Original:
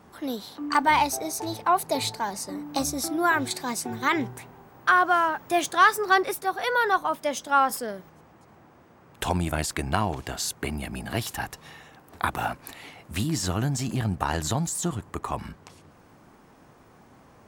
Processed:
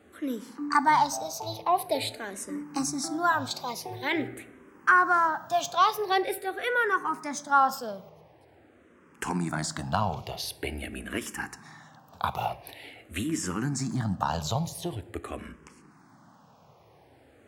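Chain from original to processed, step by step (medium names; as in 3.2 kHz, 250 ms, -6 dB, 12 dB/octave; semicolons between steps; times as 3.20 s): high-pass 79 Hz; treble shelf 12 kHz -6.5 dB; on a send at -14 dB: reverberation RT60 1.0 s, pre-delay 3 ms; on the sum: barber-pole phaser -0.46 Hz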